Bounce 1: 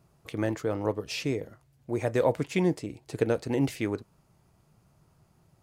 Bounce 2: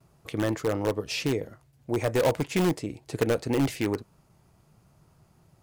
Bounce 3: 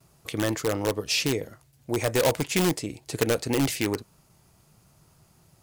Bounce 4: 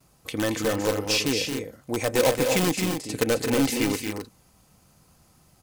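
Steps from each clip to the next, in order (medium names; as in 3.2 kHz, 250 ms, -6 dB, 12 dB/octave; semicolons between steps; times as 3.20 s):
gate with hold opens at -56 dBFS; in parallel at -7.5 dB: integer overflow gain 19.5 dB
treble shelf 2.7 kHz +10 dB
comb 3.9 ms, depth 38%; on a send: loudspeakers at several distances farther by 77 m -7 dB, 90 m -7 dB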